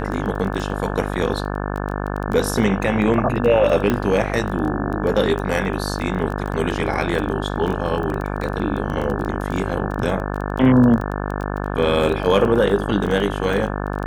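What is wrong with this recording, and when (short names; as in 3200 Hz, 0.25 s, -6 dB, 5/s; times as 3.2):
buzz 50 Hz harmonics 35 -25 dBFS
crackle 14/s -24 dBFS
3.9 pop -8 dBFS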